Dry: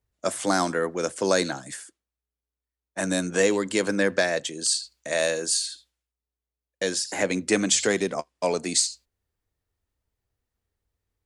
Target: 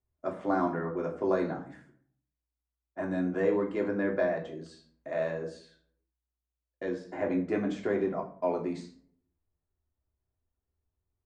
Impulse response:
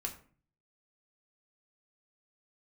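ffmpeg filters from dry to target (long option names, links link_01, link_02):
-filter_complex "[0:a]lowpass=1200[link_01];[1:a]atrim=start_sample=2205,asetrate=37926,aresample=44100[link_02];[link_01][link_02]afir=irnorm=-1:irlink=0,volume=-5dB"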